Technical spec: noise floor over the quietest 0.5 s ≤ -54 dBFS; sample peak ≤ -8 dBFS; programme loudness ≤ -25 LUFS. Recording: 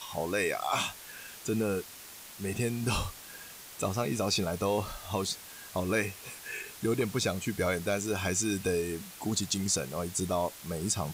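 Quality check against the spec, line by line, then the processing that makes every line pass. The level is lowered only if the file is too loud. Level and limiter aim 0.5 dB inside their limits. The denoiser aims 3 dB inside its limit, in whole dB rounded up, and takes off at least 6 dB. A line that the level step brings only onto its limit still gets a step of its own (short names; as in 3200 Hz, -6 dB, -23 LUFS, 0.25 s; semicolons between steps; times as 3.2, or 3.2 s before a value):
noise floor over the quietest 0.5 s -48 dBFS: fail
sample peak -14.5 dBFS: OK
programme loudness -32.0 LUFS: OK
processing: denoiser 9 dB, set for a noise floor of -48 dBFS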